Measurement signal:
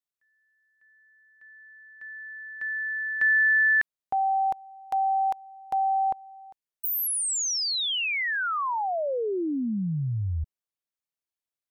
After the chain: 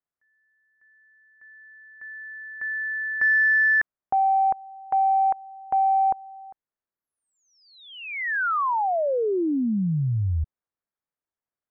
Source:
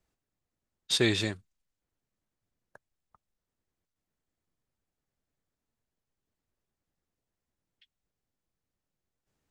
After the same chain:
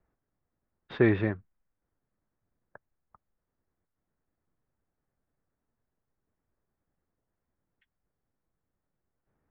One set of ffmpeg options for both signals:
ffmpeg -i in.wav -af "lowpass=frequency=1800:width=0.5412,lowpass=frequency=1800:width=1.3066,acontrast=74,volume=-2.5dB" out.wav

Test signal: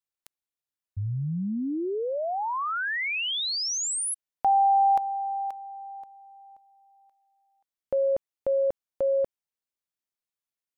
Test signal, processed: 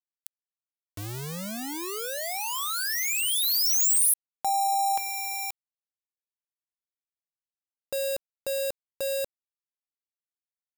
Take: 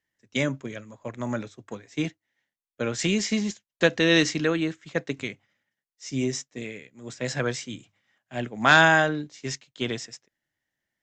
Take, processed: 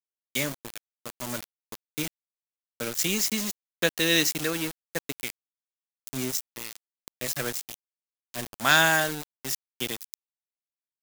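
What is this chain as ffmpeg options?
ffmpeg -i in.wav -af "aeval=exprs='val(0)*gte(abs(val(0)),0.0376)':channel_layout=same,crystalizer=i=3.5:c=0,volume=-6dB" out.wav

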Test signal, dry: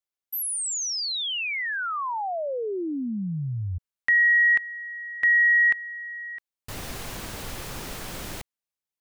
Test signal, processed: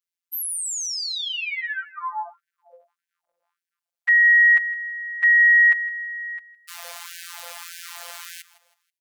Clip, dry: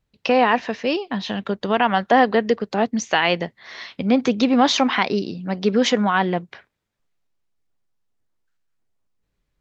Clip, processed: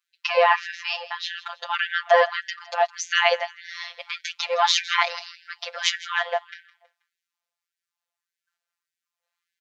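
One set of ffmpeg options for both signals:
ffmpeg -i in.wav -af "aecho=1:1:161|322|483:0.126|0.0453|0.0163,afftfilt=real='hypot(re,im)*cos(PI*b)':imag='0':win_size=1024:overlap=0.75,afftfilt=real='re*gte(b*sr/1024,490*pow(1500/490,0.5+0.5*sin(2*PI*1.7*pts/sr)))':imag='im*gte(b*sr/1024,490*pow(1500/490,0.5+0.5*sin(2*PI*1.7*pts/sr)))':win_size=1024:overlap=0.75,volume=4dB" out.wav

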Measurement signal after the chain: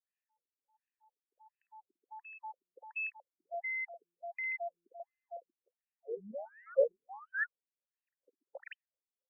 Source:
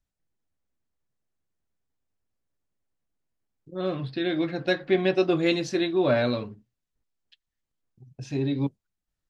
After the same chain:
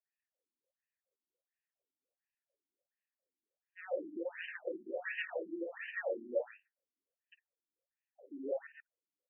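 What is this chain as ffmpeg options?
ffmpeg -i in.wav -filter_complex "[0:a]aeval=exprs='0.316*sin(PI/2*6.31*val(0)/0.316)':channel_layout=same,asplit=3[link_01][link_02][link_03];[link_01]bandpass=frequency=530:width_type=q:width=8,volume=0dB[link_04];[link_02]bandpass=frequency=1840:width_type=q:width=8,volume=-6dB[link_05];[link_03]bandpass=frequency=2480:width_type=q:width=8,volume=-9dB[link_06];[link_04][link_05][link_06]amix=inputs=3:normalize=0,asplit=2[link_07][link_08];[link_08]aecho=0:1:52.48|134.1:0.282|0.631[link_09];[link_07][link_09]amix=inputs=2:normalize=0,afftfilt=real='re*between(b*sr/1024,250*pow(2200/250,0.5+0.5*sin(2*PI*1.4*pts/sr))/1.41,250*pow(2200/250,0.5+0.5*sin(2*PI*1.4*pts/sr))*1.41)':imag='im*between(b*sr/1024,250*pow(2200/250,0.5+0.5*sin(2*PI*1.4*pts/sr))/1.41,250*pow(2200/250,0.5+0.5*sin(2*PI*1.4*pts/sr))*1.41)':win_size=1024:overlap=0.75,volume=-9dB" out.wav

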